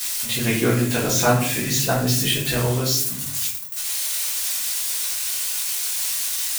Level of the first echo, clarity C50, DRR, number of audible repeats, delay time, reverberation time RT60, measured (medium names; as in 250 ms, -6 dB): no echo, 5.0 dB, -7.5 dB, no echo, no echo, 0.65 s